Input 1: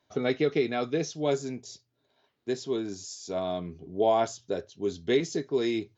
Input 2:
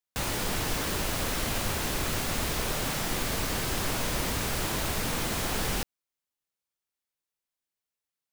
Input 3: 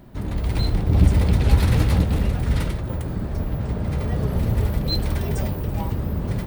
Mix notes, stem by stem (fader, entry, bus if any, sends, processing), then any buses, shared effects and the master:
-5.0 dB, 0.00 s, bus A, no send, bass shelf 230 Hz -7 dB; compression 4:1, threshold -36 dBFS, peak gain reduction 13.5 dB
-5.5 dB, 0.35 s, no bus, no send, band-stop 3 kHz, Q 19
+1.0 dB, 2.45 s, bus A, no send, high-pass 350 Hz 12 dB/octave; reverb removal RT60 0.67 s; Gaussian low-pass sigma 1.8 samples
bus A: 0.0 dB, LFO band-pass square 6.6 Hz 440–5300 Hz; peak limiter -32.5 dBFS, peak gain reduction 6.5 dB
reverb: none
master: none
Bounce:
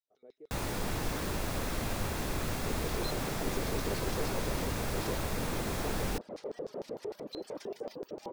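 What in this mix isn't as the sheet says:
stem 1 -5.0 dB -> -15.0 dB; stem 3: missing Gaussian low-pass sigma 1.8 samples; master: extra tilt shelf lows +3.5 dB, about 1.4 kHz

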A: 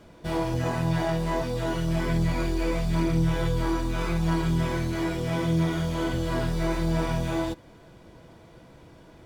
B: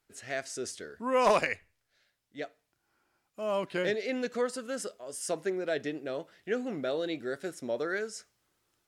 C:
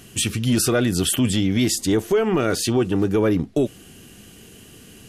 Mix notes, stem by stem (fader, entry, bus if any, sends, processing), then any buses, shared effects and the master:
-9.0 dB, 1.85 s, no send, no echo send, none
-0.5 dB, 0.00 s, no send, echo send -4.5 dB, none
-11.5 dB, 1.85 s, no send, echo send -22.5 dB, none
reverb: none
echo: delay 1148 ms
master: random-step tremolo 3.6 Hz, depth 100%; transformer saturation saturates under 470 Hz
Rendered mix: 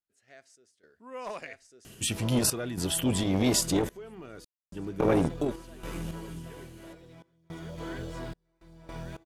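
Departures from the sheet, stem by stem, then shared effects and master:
stem B -0.5 dB -> -12.5 dB; stem C -11.5 dB -> -1.0 dB

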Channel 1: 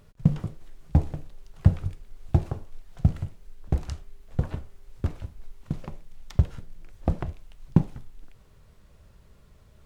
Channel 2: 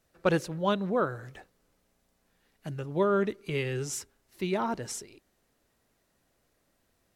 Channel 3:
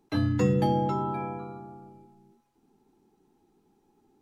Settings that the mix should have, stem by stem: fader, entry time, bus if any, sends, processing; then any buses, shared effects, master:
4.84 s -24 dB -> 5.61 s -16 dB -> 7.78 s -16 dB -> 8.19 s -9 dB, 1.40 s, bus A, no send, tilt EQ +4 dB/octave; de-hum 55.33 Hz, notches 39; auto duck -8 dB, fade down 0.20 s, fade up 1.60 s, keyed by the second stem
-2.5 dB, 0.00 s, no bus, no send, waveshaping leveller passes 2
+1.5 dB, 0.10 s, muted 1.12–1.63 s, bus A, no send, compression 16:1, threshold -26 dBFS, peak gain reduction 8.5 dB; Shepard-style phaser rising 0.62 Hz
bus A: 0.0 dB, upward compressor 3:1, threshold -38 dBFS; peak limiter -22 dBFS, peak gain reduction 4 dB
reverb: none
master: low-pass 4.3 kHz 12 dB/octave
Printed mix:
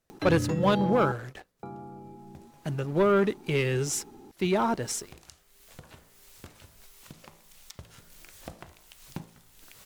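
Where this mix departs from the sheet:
stem 3: missing Shepard-style phaser rising 0.62 Hz; master: missing low-pass 4.3 kHz 12 dB/octave

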